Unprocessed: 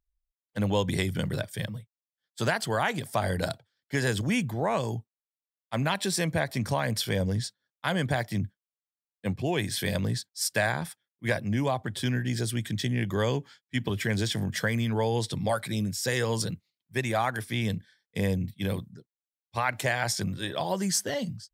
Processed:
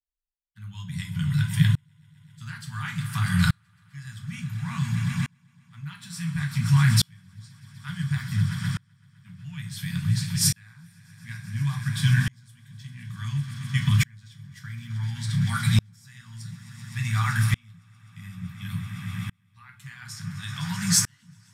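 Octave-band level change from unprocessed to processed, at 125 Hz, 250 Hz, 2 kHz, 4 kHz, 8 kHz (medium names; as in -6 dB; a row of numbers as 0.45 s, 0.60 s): +6.5 dB, -0.5 dB, -2.0 dB, +0.5 dB, +4.5 dB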